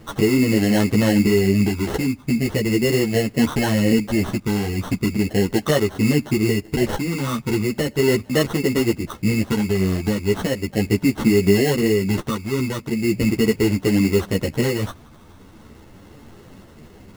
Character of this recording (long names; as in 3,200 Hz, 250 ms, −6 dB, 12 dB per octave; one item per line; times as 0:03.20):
phaser sweep stages 6, 0.38 Hz, lowest notch 680–2,400 Hz
aliases and images of a low sample rate 2,400 Hz, jitter 0%
a shimmering, thickened sound